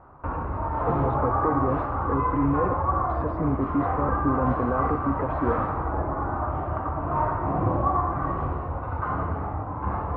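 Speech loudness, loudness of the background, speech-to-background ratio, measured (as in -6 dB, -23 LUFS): -29.0 LUFS, -27.0 LUFS, -2.0 dB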